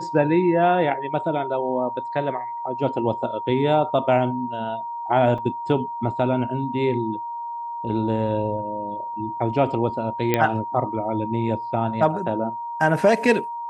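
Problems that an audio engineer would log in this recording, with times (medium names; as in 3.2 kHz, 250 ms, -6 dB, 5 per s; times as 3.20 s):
whine 940 Hz -28 dBFS
5.38 s: dropout 4.6 ms
10.34 s: pop -6 dBFS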